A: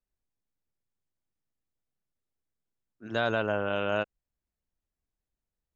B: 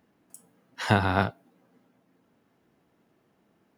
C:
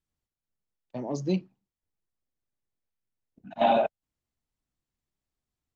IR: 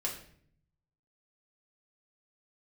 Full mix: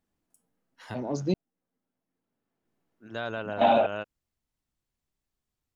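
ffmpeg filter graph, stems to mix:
-filter_complex "[0:a]volume=0.501[s0];[1:a]volume=0.501,afade=t=in:st=1.19:d=0.39:silence=0.281838[s1];[2:a]volume=1.12,asplit=3[s2][s3][s4];[s2]atrim=end=1.34,asetpts=PTS-STARTPTS,afade=t=out:st=1.336:d=0.004:c=hsin[s5];[s3]atrim=start=1.34:end=2.65,asetpts=PTS-STARTPTS,volume=0[s6];[s4]atrim=start=2.65,asetpts=PTS-STARTPTS,afade=t=in:d=0.004:c=hsin[s7];[s5][s6][s7]concat=n=3:v=0:a=1,asplit=2[s8][s9];[s9]apad=whole_len=166565[s10];[s1][s10]sidechaincompress=threshold=0.00398:ratio=3:attack=7.1:release=1230[s11];[s0][s11][s8]amix=inputs=3:normalize=0"

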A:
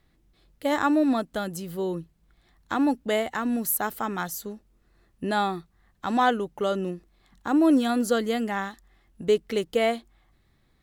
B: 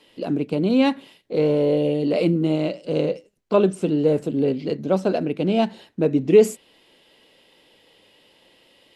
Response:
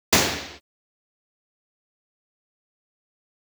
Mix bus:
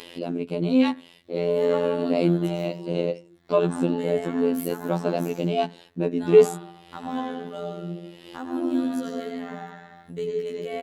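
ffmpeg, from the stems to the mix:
-filter_complex "[0:a]adelay=900,volume=0.335,asplit=2[s0][s1];[s1]volume=0.075[s2];[1:a]volume=1[s3];[2:a]atrim=start_sample=2205[s4];[s2][s4]afir=irnorm=-1:irlink=0[s5];[s0][s3][s5]amix=inputs=3:normalize=0,highpass=54,acompressor=mode=upward:threshold=0.0447:ratio=2.5,afftfilt=real='hypot(re,im)*cos(PI*b)':imag='0':win_size=2048:overlap=0.75"

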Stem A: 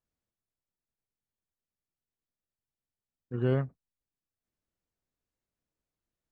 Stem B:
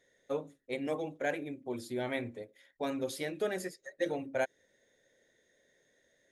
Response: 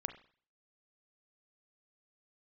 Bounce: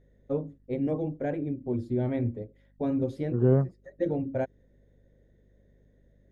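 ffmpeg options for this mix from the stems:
-filter_complex "[0:a]lowpass=f=1200:p=1,equalizer=f=940:t=o:w=2.9:g=9.5,volume=0.631,asplit=2[s0][s1];[1:a]aemphasis=mode=reproduction:type=bsi,volume=0.891[s2];[s1]apad=whole_len=278647[s3];[s2][s3]sidechaincompress=threshold=0.00631:ratio=12:attack=16:release=190[s4];[s0][s4]amix=inputs=2:normalize=0,tiltshelf=f=730:g=9,aeval=exprs='val(0)+0.000891*(sin(2*PI*50*n/s)+sin(2*PI*2*50*n/s)/2+sin(2*PI*3*50*n/s)/3+sin(2*PI*4*50*n/s)/4+sin(2*PI*5*50*n/s)/5)':c=same"

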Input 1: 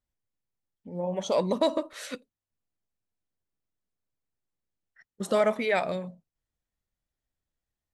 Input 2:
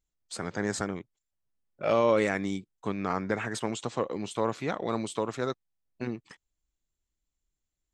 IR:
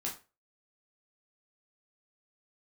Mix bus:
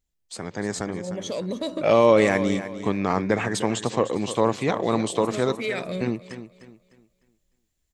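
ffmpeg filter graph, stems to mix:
-filter_complex "[0:a]equalizer=f=870:w=1.5:g=-13.5,alimiter=level_in=1.19:limit=0.0631:level=0:latency=1:release=323,volume=0.841,volume=1.12,asplit=2[s0][s1];[s1]volume=0.141[s2];[1:a]equalizer=f=1400:w=3.7:g=-6.5,volume=1.19,asplit=3[s3][s4][s5];[s4]volume=0.237[s6];[s5]apad=whole_len=350059[s7];[s0][s7]sidechaincompress=threshold=0.0112:ratio=8:attack=16:release=138[s8];[s2][s6]amix=inputs=2:normalize=0,aecho=0:1:302|604|906|1208|1510:1|0.32|0.102|0.0328|0.0105[s9];[s8][s3][s9]amix=inputs=3:normalize=0,dynaudnorm=f=350:g=7:m=2.11"

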